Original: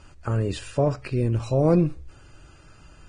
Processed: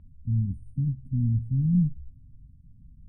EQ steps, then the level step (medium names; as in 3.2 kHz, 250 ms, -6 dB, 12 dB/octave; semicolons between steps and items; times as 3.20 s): brick-wall FIR band-stop 270–8100 Hz; distance through air 380 m; 0.0 dB